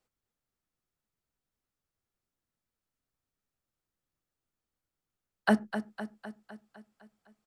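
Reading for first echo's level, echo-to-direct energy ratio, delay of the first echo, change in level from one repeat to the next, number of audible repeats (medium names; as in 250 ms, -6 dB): -10.0 dB, -8.0 dB, 254 ms, -4.5 dB, 6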